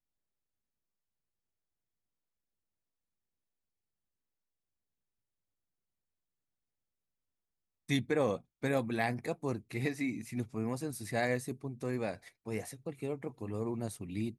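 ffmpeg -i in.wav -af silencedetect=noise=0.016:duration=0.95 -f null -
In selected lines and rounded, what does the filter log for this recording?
silence_start: 0.00
silence_end: 7.89 | silence_duration: 7.89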